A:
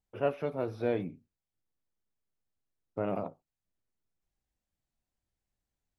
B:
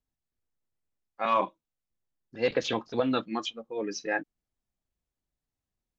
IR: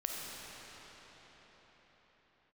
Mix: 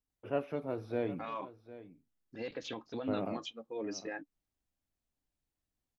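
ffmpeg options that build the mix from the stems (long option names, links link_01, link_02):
-filter_complex "[0:a]adelay=100,volume=-4.5dB,asplit=2[link_01][link_02];[link_02]volume=-16dB[link_03];[1:a]alimiter=level_in=2dB:limit=-24dB:level=0:latency=1:release=266,volume=-2dB,volume=-5dB[link_04];[link_03]aecho=0:1:755:1[link_05];[link_01][link_04][link_05]amix=inputs=3:normalize=0,equalizer=frequency=290:width=5.2:gain=5.5"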